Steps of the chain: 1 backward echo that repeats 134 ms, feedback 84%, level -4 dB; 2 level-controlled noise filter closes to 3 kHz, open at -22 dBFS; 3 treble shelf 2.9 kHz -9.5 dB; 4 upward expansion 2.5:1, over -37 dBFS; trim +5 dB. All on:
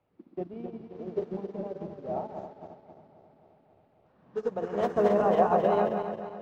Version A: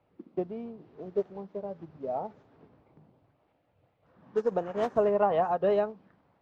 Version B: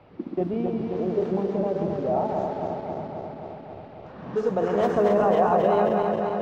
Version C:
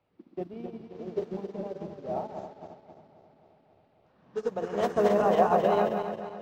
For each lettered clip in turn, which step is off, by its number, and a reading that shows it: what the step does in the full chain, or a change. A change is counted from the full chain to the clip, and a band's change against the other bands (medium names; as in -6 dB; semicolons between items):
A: 1, 500 Hz band +2.5 dB; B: 4, crest factor change -3.5 dB; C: 3, 2 kHz band +2.5 dB